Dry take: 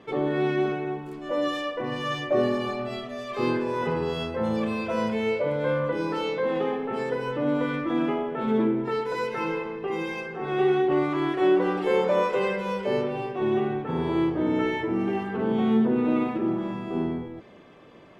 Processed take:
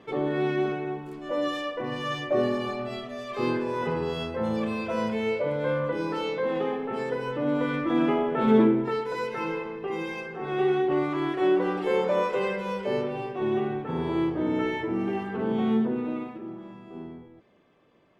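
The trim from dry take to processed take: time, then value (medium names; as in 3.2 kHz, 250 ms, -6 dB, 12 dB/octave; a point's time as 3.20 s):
7.45 s -1.5 dB
8.56 s +5 dB
9.02 s -2 dB
15.73 s -2 dB
16.44 s -12.5 dB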